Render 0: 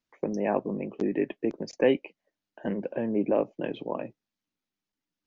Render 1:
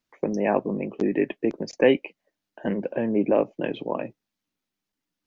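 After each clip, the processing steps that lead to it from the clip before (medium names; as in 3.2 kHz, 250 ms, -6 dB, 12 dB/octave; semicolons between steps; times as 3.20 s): dynamic bell 2.2 kHz, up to +3 dB, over -45 dBFS, Q 1.3; trim +4 dB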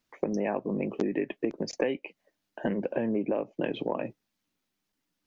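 compression 10:1, threshold -28 dBFS, peak gain reduction 16 dB; trim +3 dB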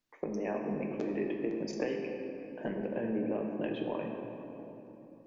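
simulated room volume 190 m³, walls hard, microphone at 0.41 m; trim -7.5 dB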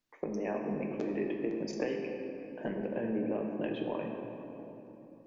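no audible change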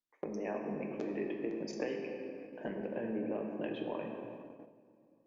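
gate -44 dBFS, range -10 dB; bass shelf 160 Hz -5.5 dB; trim -2.5 dB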